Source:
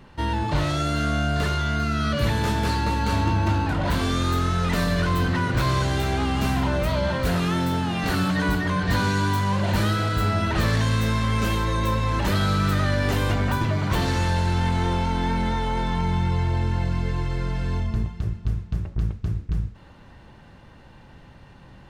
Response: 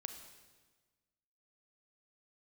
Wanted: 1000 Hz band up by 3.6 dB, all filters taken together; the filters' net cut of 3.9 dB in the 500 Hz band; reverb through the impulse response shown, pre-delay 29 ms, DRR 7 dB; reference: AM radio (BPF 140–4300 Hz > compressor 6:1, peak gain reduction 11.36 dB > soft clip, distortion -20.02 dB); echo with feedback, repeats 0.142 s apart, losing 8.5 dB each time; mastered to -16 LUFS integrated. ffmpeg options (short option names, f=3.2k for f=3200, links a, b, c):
-filter_complex "[0:a]equalizer=f=500:t=o:g=-7,equalizer=f=1k:t=o:g=6,aecho=1:1:142|284|426|568:0.376|0.143|0.0543|0.0206,asplit=2[a][b];[1:a]atrim=start_sample=2205,adelay=29[c];[b][c]afir=irnorm=-1:irlink=0,volume=-4dB[d];[a][d]amix=inputs=2:normalize=0,highpass=140,lowpass=4.3k,acompressor=threshold=-29dB:ratio=6,asoftclip=threshold=-25dB,volume=17.5dB"